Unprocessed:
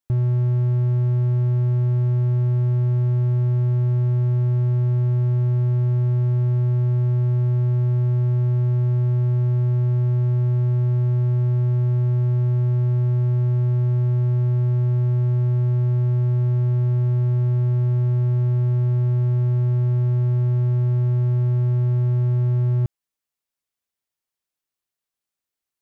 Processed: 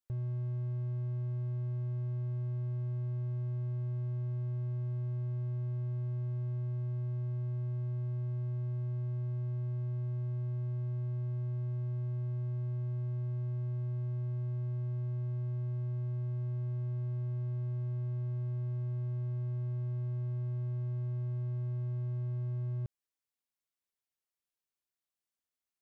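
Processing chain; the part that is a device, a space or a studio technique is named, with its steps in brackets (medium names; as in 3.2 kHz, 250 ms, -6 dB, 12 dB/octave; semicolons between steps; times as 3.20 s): limiter into clipper (peak limiter -20 dBFS, peak gain reduction 6 dB; hard clipper -25.5 dBFS, distortion -13 dB); trim -7.5 dB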